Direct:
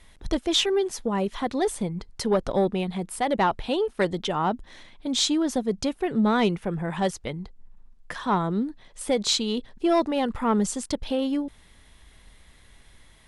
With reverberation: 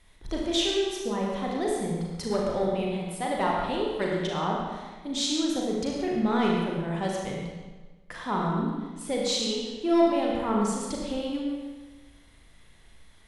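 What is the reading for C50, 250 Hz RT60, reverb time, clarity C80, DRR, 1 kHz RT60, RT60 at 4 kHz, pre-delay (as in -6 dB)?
-0.5 dB, 1.3 s, 1.3 s, 1.5 dB, -2.5 dB, 1.3 s, 1.1 s, 35 ms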